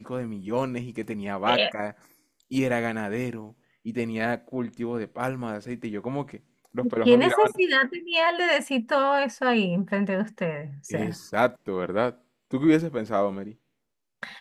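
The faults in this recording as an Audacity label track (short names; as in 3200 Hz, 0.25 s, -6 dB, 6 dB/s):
1.040000	1.040000	gap 2.8 ms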